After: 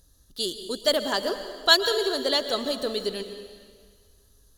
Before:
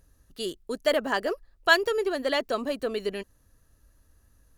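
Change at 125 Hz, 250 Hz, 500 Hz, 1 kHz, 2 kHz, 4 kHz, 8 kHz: can't be measured, +0.5 dB, +0.5 dB, −0.5 dB, −2.0 dB, +9.5 dB, +8.0 dB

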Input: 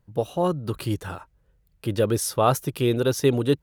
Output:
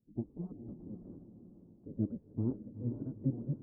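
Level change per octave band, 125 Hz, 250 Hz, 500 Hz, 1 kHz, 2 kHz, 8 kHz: −12.0 dB, −11.0 dB, −26.0 dB, below −35 dB, below −40 dB, below −40 dB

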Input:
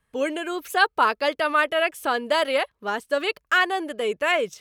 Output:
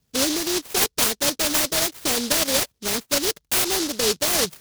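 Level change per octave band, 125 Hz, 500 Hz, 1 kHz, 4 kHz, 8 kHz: can't be measured, −3.0 dB, −8.0 dB, +7.0 dB, +21.5 dB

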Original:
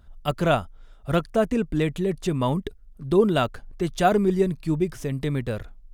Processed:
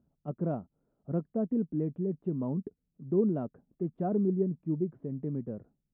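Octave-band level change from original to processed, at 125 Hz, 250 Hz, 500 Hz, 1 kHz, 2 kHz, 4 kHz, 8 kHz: −8.0 dB, −6.0 dB, −10.0 dB, −17.5 dB, below −30 dB, below −40 dB, below −35 dB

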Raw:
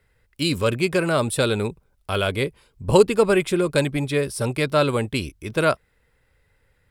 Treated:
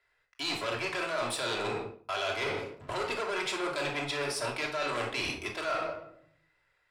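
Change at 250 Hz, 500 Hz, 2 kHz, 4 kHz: −16.5, −13.5, −6.0, −5.5 decibels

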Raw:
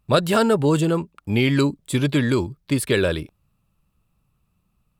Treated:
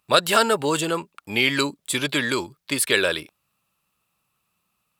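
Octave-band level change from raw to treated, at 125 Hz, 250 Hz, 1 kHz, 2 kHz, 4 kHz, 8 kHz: −13.0, −7.5, +2.5, +5.0, +6.0, +6.5 decibels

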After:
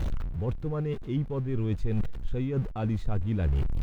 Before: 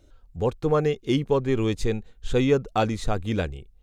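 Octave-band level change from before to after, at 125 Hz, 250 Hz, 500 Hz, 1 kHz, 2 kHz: +0.5, −5.5, −12.0, −13.5, −12.5 decibels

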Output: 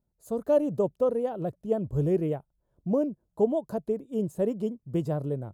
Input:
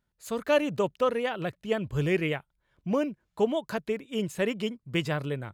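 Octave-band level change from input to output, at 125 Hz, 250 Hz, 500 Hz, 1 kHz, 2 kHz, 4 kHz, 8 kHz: +1.5 dB, +1.5 dB, +1.5 dB, −4.5 dB, below −15 dB, below −15 dB, can't be measured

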